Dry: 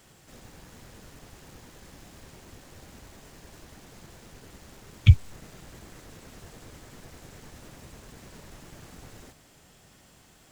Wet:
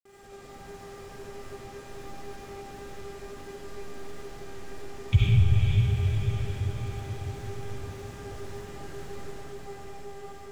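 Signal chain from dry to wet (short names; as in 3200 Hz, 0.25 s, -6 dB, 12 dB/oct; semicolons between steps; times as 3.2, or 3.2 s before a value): buzz 400 Hz, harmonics 6, -48 dBFS -8 dB/oct; grains, pitch spread up and down by 0 st; diffused feedback echo 0.485 s, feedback 58%, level -4 dB; digital reverb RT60 1.9 s, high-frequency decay 0.65×, pre-delay 30 ms, DRR -7.5 dB; gain -5.5 dB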